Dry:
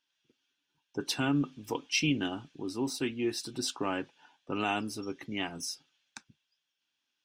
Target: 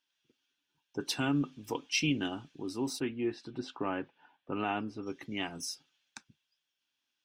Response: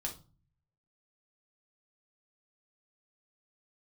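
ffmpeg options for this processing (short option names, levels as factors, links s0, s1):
-filter_complex "[0:a]asplit=3[s0][s1][s2];[s0]afade=t=out:st=2.99:d=0.02[s3];[s1]lowpass=2300,afade=t=in:st=2.99:d=0.02,afade=t=out:st=5.05:d=0.02[s4];[s2]afade=t=in:st=5.05:d=0.02[s5];[s3][s4][s5]amix=inputs=3:normalize=0,volume=0.841"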